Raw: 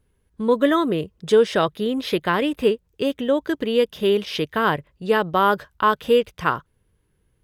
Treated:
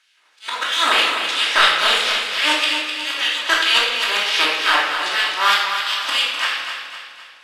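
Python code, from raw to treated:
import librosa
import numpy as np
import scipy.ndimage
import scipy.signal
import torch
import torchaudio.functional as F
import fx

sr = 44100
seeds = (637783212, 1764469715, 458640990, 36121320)

p1 = fx.spec_flatten(x, sr, power=0.4)
p2 = scipy.signal.sosfilt(scipy.signal.butter(2, 5200.0, 'lowpass', fs=sr, output='sos'), p1)
p3 = fx.peak_eq(p2, sr, hz=300.0, db=6.0, octaves=0.61)
p4 = fx.auto_swell(p3, sr, attack_ms=243.0)
p5 = fx.rider(p4, sr, range_db=5, speed_s=0.5)
p6 = p4 + (p5 * 10.0 ** (-3.0 / 20.0))
p7 = fx.filter_lfo_highpass(p6, sr, shape='sine', hz=3.1, low_hz=920.0, high_hz=3000.0, q=1.7)
p8 = 10.0 ** (-3.5 / 20.0) * np.tanh(p7 / 10.0 ** (-3.5 / 20.0))
p9 = p8 + fx.echo_feedback(p8, sr, ms=255, feedback_pct=48, wet_db=-8, dry=0)
p10 = fx.room_shoebox(p9, sr, seeds[0], volume_m3=600.0, walls='mixed', distance_m=2.8)
y = p10 * 10.0 ** (-1.0 / 20.0)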